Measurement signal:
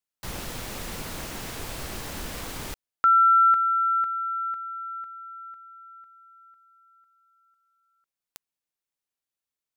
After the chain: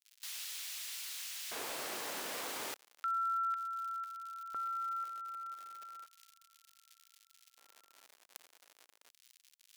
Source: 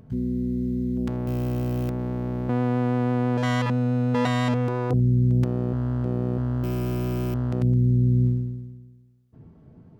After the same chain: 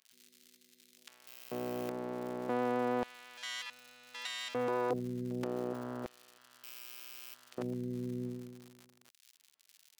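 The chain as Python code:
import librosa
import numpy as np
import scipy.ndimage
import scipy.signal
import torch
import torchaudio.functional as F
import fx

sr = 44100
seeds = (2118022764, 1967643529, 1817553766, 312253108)

y = fx.dmg_crackle(x, sr, seeds[0], per_s=140.0, level_db=-39.0)
y = fx.filter_lfo_highpass(y, sr, shape='square', hz=0.33, low_hz=430.0, high_hz=3000.0, q=0.88)
y = y * librosa.db_to_amplitude(-3.5)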